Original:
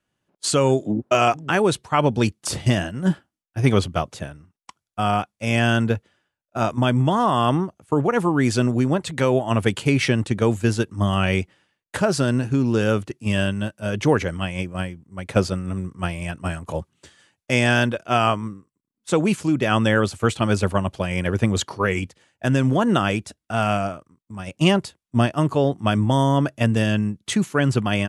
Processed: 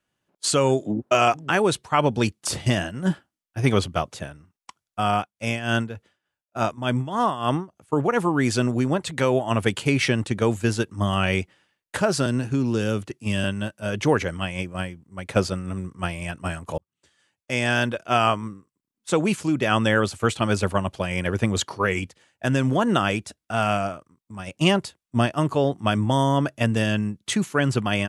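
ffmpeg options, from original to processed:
-filter_complex "[0:a]asettb=1/sr,asplit=3[a][b][c];[a]atrim=end=5.174[d];[b]atrim=start=5.17:end=7.93,asetpts=PTS-STARTPTS,afade=t=in:d=0.004:c=qsin,afade=t=out:st=2.756:d=0.004:c=qsin,tremolo=f=3.4:d=0.77[e];[c]atrim=start=7.926[f];[d][e]acrossfade=d=0.004:c1=hsin:c2=qsin[g];[g][f]acrossfade=d=0.004:c1=qsin:c2=hsin,asettb=1/sr,asplit=3[h][i][j];[h]atrim=end=12.264[k];[i]atrim=start=12.26:end=13.44,asetpts=PTS-STARTPTS,afade=t=in:d=0.004:c=qsin,afade=t=out:st=1.176:d=0.004:c=qsin,acrossover=split=410|3000[l][m][n];[m]acompressor=threshold=-33dB:ratio=2:attack=3.2:release=140:knee=2.83:detection=peak[o];[l][o][n]amix=inputs=3:normalize=0[p];[j]atrim=start=13.436[q];[k][p]acrossfade=d=0.004:c1=hsin:c2=qsin[r];[r][q]acrossfade=d=0.004:c1=qsin:c2=hsin,asplit=2[s][t];[s]atrim=end=16.78,asetpts=PTS-STARTPTS,afade=t=out:st=16.776:d=0.004:c=hsin[u];[t]atrim=start=16.78,asetpts=PTS-STARTPTS,afade=t=in:d=1.27[v];[u][v]concat=n=2:v=0:a=1,lowshelf=f=430:g=-3.5"

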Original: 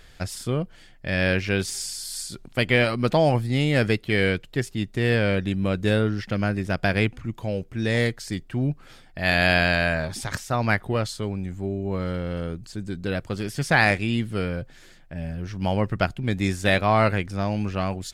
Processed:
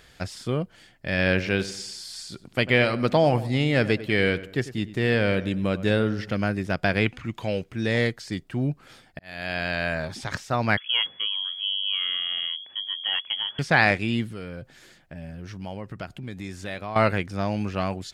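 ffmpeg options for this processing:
-filter_complex "[0:a]asettb=1/sr,asplit=3[a][b][c];[a]atrim=end=1.084[d];[b]atrim=start=1.08:end=6.35,asetpts=PTS-STARTPTS,afade=t=in:d=0.004:c=qsin,afade=t=out:st=5.266:d=0.004:c=qsin,asplit=2[e][f];[f]adelay=97,lowpass=f=2k:p=1,volume=-14.5dB,asplit=2[g][h];[h]adelay=97,lowpass=f=2k:p=1,volume=0.43,asplit=2[i][j];[j]adelay=97,lowpass=f=2k:p=1,volume=0.43,asplit=2[k][l];[l]adelay=97,lowpass=f=2k:p=1,volume=0.43[m];[e][g][i][k][m]amix=inputs=5:normalize=0,atrim=end_sample=232407[n];[c]atrim=start=6.346[o];[d][n]acrossfade=d=0.004:c1=hsin:c2=qsin[p];[p][o]acrossfade=d=0.004:c1=qsin:c2=hsin,asettb=1/sr,asplit=3[q][r][s];[q]atrim=end=7.064[t];[r]atrim=start=7.06:end=7.73,asetpts=PTS-STARTPTS,afade=t=in:d=0.004:c=qsin,afade=t=out:st=0.666:d=0.004:c=qsin,equalizer=f=2.6k:t=o:w=2.5:g=8.5[u];[s]atrim=start=7.726[v];[t][u]acrossfade=d=0.004:c1=hsin:c2=qsin[w];[w][v]acrossfade=d=0.004:c1=qsin:c2=hsin,asettb=1/sr,asplit=3[x][y][z];[x]atrim=end=10.774[aa];[y]atrim=start=10.77:end=13.59,asetpts=PTS-STARTPTS,afade=t=in:d=0.004:c=qsin,afade=t=out:st=2.816:d=0.004:c=qsin,lowpass=f=2.9k:t=q:w=0.5098,lowpass=f=2.9k:t=q:w=0.6013,lowpass=f=2.9k:t=q:w=0.9,lowpass=f=2.9k:t=q:w=2.563,afreqshift=-3400[ab];[z]atrim=start=13.586[ac];[aa][ab]acrossfade=d=0.004:c1=hsin:c2=qsin[ad];[ad][ac]acrossfade=d=0.004:c1=qsin:c2=hsin,asettb=1/sr,asplit=3[ae][af][ag];[ae]atrim=end=14.284[ah];[af]atrim=start=14.28:end=16.96,asetpts=PTS-STARTPTS,afade=t=in:d=0.004:c=qsin,afade=t=out:st=2.676:d=0.004:c=qsin,acompressor=threshold=-33dB:ratio=3:attack=3.2:release=140:knee=1:detection=peak[ai];[ag]atrim=start=16.956[aj];[ah][ai]acrossfade=d=0.004:c1=hsin:c2=qsin[ak];[ak][aj]acrossfade=d=0.004:c1=qsin:c2=hsin,asplit=2[al][am];[al]atrim=end=9.19,asetpts=PTS-STARTPTS,afade=t=out:st=9.186:d=0.004:c=hsin[an];[am]atrim=start=9.19,asetpts=PTS-STARTPTS,afade=t=in:d=1.04[ao];[an][ao]concat=n=2:v=0:a=1,highpass=f=100:p=1,acrossover=split=6100[ap][aq];[aq]acompressor=threshold=-52dB:ratio=4:attack=1:release=60[ar];[ap][ar]amix=inputs=2:normalize=0"

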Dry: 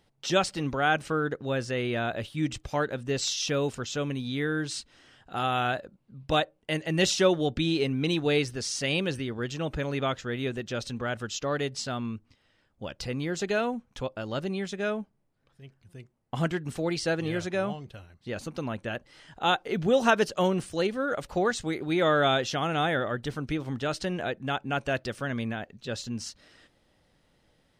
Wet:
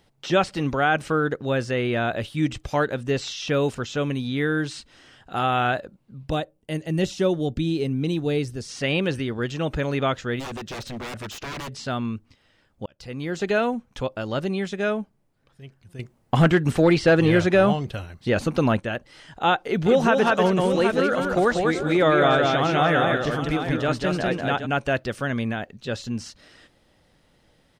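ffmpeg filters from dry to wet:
-filter_complex "[0:a]asplit=3[a][b][c];[a]afade=t=out:st=6.29:d=0.02[d];[b]equalizer=f=1.8k:w=0.3:g=-11,afade=t=in:st=6.29:d=0.02,afade=t=out:st=8.68:d=0.02[e];[c]afade=t=in:st=8.68:d=0.02[f];[d][e][f]amix=inputs=3:normalize=0,asplit=3[g][h][i];[g]afade=t=out:st=10.39:d=0.02[j];[h]aeval=exprs='0.0224*(abs(mod(val(0)/0.0224+3,4)-2)-1)':c=same,afade=t=in:st=10.39:d=0.02,afade=t=out:st=11.68:d=0.02[k];[i]afade=t=in:st=11.68:d=0.02[l];[j][k][l]amix=inputs=3:normalize=0,asettb=1/sr,asplit=3[m][n][o];[m]atrim=end=15.994[p];[n]atrim=start=15.99:end=18.8,asetpts=PTS-STARTPTS,afade=t=in:d=0.004:c=qsin,afade=t=out:st=2.806:d=0.004:c=qsin,aeval=exprs='0.2*sin(PI/2*1.58*val(0)/0.2)':c=same[q];[o]atrim=start=18.796[r];[p][q]acrossfade=d=0.004:c1=hsin:c2=qsin[s];[s][r]acrossfade=d=0.004:c1=qsin:c2=hsin,asplit=3[t][u][v];[t]afade=t=out:st=19.85:d=0.02[w];[u]aecho=1:1:196|376|773:0.668|0.141|0.316,afade=t=in:st=19.85:d=0.02,afade=t=out:st=24.65:d=0.02[x];[v]afade=t=in:st=24.65:d=0.02[y];[w][x][y]amix=inputs=3:normalize=0,asplit=2[z][aa];[z]atrim=end=12.86,asetpts=PTS-STARTPTS,afade=t=out:st=12.856:d=0.004:c=hsin[ab];[aa]atrim=start=12.86,asetpts=PTS-STARTPTS,afade=t=in:d=0.61[ac];[ab][ac]concat=n=2:v=0:a=1,acrossover=split=3100[ad][ae];[ae]acompressor=threshold=-44dB:ratio=4:attack=1:release=60[af];[ad][af]amix=inputs=2:normalize=0,alimiter=level_in=13.5dB:limit=-1dB:release=50:level=0:latency=1,volume=-8dB"

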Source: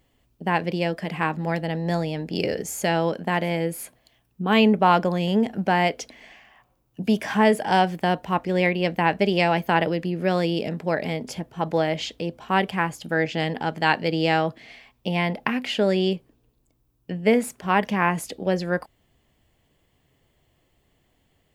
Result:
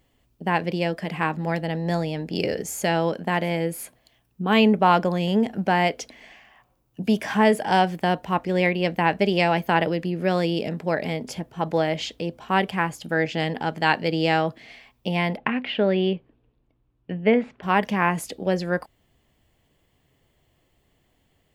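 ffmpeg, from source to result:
-filter_complex "[0:a]asettb=1/sr,asplit=3[a][b][c];[a]atrim=end=15.374[d];[b]atrim=start=15.37:end=17.63,asetpts=PTS-STARTPTS,afade=t=in:d=0.004:c=qsin,afade=t=out:st=2.256:d=0.004:c=qsin,lowpass=f=3.3k:w=0.5412,lowpass=f=3.3k:w=1.3066[e];[c]atrim=start=17.626[f];[d][e]acrossfade=d=0.004:c1=hsin:c2=qsin[g];[g][f]acrossfade=d=0.004:c1=qsin:c2=hsin"

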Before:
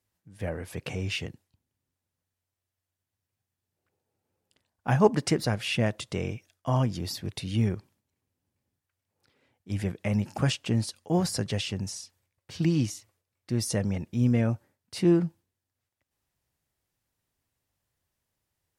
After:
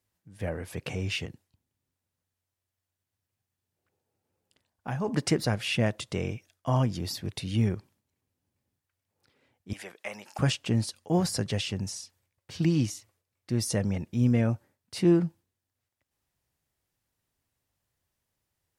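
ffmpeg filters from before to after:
-filter_complex "[0:a]asettb=1/sr,asplit=3[a][b][c];[a]atrim=end=1.254[d];[b]atrim=start=1.25:end=5.08,asetpts=PTS-STARTPTS,afade=t=in:d=0.004:c=qsin,afade=t=out:st=3.826:d=0.004:c=qsin,acompressor=threshold=-35dB:ratio=2:attack=3.2:release=140:knee=1:detection=peak[e];[c]atrim=start=5.076[f];[d][e]acrossfade=d=0.004:c1=hsin:c2=qsin[g];[g][f]acrossfade=d=0.004:c1=qsin:c2=hsin,asettb=1/sr,asplit=3[h][i][j];[h]atrim=end=9.734[k];[i]atrim=start=9.73:end=10.39,asetpts=PTS-STARTPTS,afade=t=in:d=0.004:c=qsin,afade=t=out:st=0.656:d=0.004:c=qsin,highpass=710[l];[j]atrim=start=10.386[m];[k][l]acrossfade=d=0.004:c1=hsin:c2=qsin[n];[n][m]acrossfade=d=0.004:c1=qsin:c2=hsin"

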